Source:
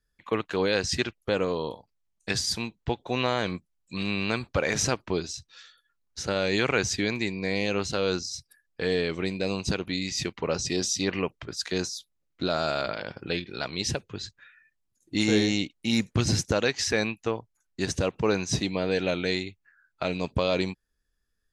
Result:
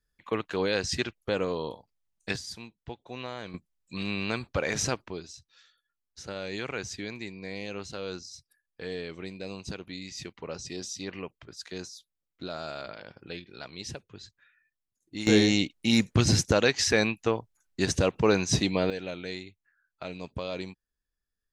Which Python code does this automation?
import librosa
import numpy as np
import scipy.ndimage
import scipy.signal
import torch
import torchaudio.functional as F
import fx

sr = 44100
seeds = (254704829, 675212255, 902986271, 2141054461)

y = fx.gain(x, sr, db=fx.steps((0.0, -2.5), (2.36, -12.0), (3.54, -3.0), (5.08, -10.0), (15.27, 2.0), (18.9, -9.5)))